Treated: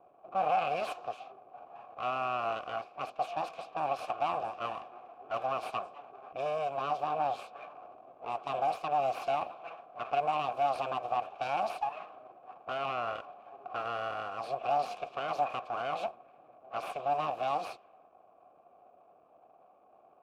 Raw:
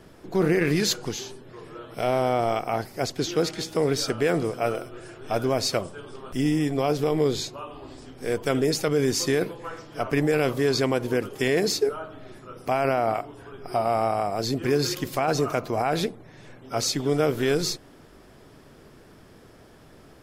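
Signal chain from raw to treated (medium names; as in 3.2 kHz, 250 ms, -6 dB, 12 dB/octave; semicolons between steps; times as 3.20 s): level-controlled noise filter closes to 560 Hz, open at -21.5 dBFS; full-wave rectifier; vowel filter a; trim +6 dB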